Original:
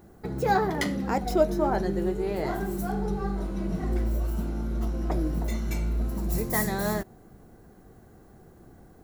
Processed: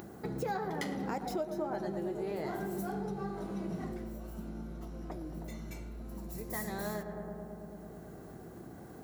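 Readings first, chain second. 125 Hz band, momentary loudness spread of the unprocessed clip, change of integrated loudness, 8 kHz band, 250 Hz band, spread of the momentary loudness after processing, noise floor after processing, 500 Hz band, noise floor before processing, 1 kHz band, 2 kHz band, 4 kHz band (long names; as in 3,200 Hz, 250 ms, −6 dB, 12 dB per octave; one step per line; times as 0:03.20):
−12.0 dB, 7 LU, −11.0 dB, −10.5 dB, −9.0 dB, 12 LU, −49 dBFS, −9.0 dB, −53 dBFS, −10.0 dB, −10.0 dB, −9.5 dB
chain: on a send: feedback echo with a low-pass in the loop 109 ms, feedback 80%, low-pass 1,700 Hz, level −11 dB
on the sum: downward compressor, threshold −31 dBFS, peak gain reduction 14.5 dB
high-pass filter 110 Hz 12 dB per octave
upward compression, threshold −39 dBFS
level −1.5 dB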